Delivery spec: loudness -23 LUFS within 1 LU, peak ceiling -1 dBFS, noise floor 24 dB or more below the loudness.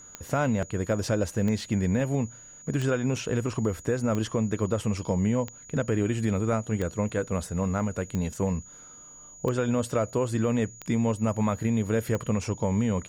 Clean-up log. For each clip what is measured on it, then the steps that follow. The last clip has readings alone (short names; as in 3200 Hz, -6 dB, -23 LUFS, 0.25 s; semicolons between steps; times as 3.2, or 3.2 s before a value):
clicks 10; steady tone 6800 Hz; tone level -46 dBFS; loudness -28.0 LUFS; peak -15.0 dBFS; loudness target -23.0 LUFS
-> de-click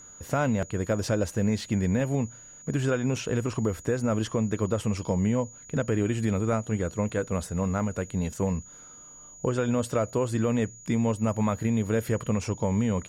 clicks 0; steady tone 6800 Hz; tone level -46 dBFS
-> notch 6800 Hz, Q 30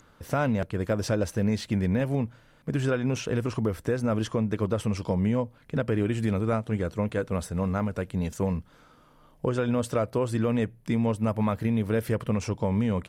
steady tone none; loudness -28.0 LUFS; peak -15.5 dBFS; loudness target -23.0 LUFS
-> gain +5 dB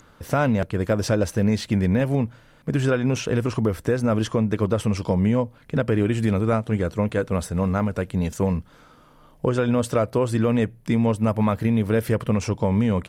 loudness -23.0 LUFS; peak -10.5 dBFS; noise floor -53 dBFS